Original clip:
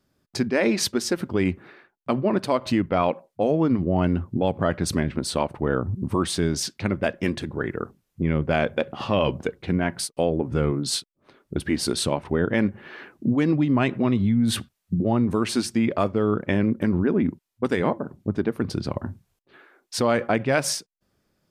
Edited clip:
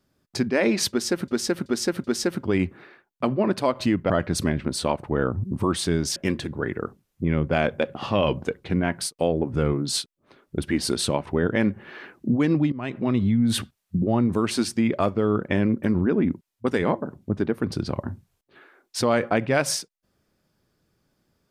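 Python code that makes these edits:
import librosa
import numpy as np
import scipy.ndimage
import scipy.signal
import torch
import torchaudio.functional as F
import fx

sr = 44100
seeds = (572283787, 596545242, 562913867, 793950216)

y = fx.edit(x, sr, fx.repeat(start_s=0.9, length_s=0.38, count=4),
    fx.cut(start_s=2.96, length_s=1.65),
    fx.cut(start_s=6.67, length_s=0.47),
    fx.fade_in_from(start_s=13.7, length_s=0.46, floor_db=-20.0), tone=tone)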